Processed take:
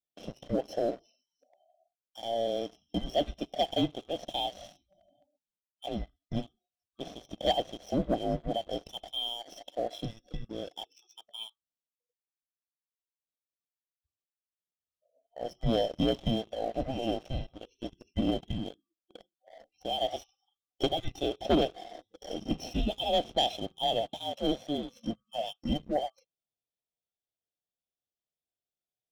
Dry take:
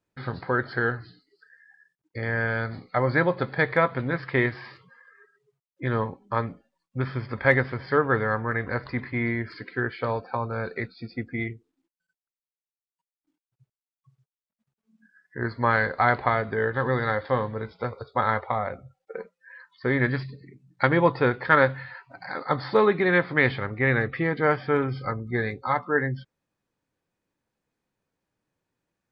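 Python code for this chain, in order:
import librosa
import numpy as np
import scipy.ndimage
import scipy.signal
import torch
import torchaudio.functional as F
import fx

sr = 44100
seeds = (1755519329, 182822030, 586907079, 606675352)

y = fx.band_swap(x, sr, width_hz=1000)
y = scipy.signal.sosfilt(scipy.signal.ellip(3, 1.0, 40, [740.0, 2700.0], 'bandstop', fs=sr, output='sos'), y)
y = fx.leveller(y, sr, passes=2)
y = F.gain(torch.from_numpy(y), -8.0).numpy()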